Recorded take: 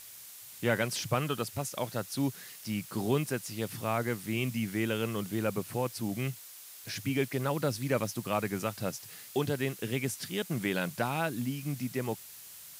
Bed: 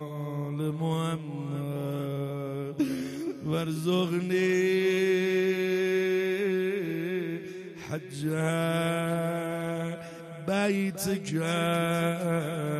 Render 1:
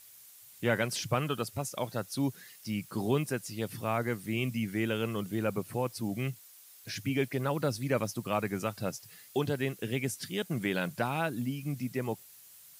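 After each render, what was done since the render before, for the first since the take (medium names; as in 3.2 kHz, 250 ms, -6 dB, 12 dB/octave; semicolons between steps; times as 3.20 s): noise reduction 8 dB, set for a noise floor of -49 dBFS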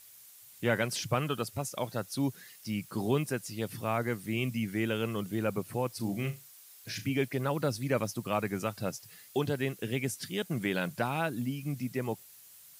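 5.96–7.08 s: flutter echo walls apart 6.1 m, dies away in 0.23 s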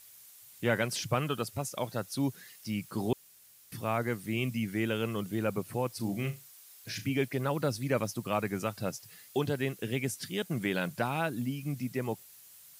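3.13–3.72 s: room tone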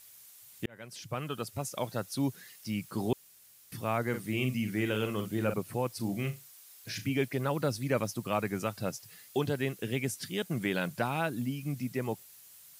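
0.66–1.72 s: fade in; 4.09–5.54 s: doubling 47 ms -7.5 dB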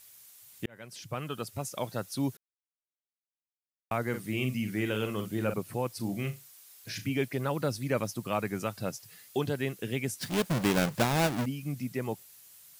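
2.37–3.91 s: mute; 10.21–11.46 s: square wave that keeps the level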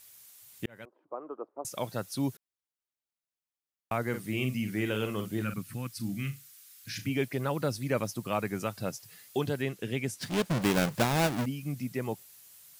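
0.85–1.65 s: Chebyshev band-pass 310–1100 Hz, order 3; 5.42–6.99 s: high-order bell 590 Hz -14.5 dB; 9.62–10.62 s: treble shelf 11 kHz -8.5 dB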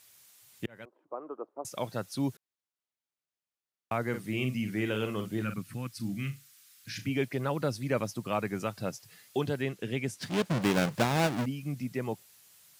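high-pass 75 Hz; treble shelf 9 kHz -8 dB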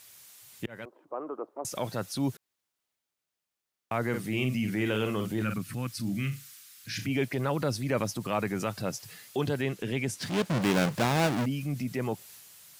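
in parallel at 0 dB: compression, threshold -36 dBFS, peak gain reduction 14 dB; on the sum: transient shaper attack -4 dB, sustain +3 dB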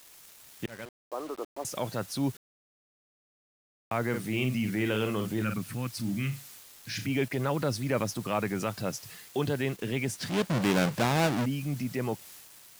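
word length cut 8-bit, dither none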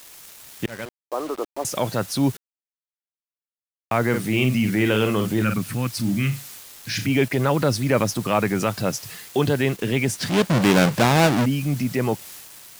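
trim +9 dB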